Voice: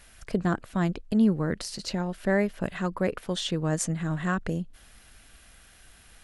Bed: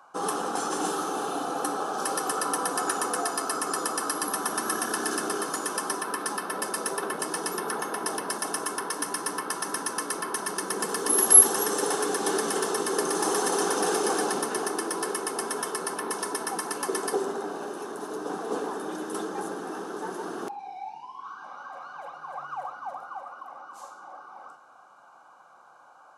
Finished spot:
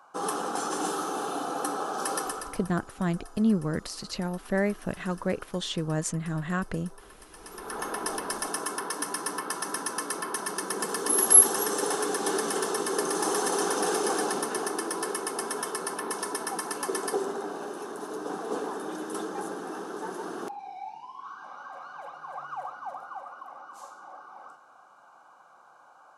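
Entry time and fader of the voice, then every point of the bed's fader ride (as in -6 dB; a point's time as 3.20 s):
2.25 s, -2.0 dB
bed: 2.21 s -1.5 dB
2.75 s -21.5 dB
7.29 s -21.5 dB
7.84 s -1.5 dB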